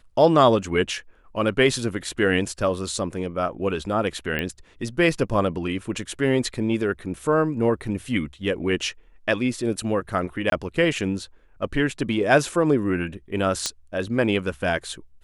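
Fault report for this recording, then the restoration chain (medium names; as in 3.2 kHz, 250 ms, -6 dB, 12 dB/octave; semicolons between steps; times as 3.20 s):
4.39 s: pop -13 dBFS
10.50–10.52 s: dropout 22 ms
13.66 s: pop -9 dBFS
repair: de-click; interpolate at 10.50 s, 22 ms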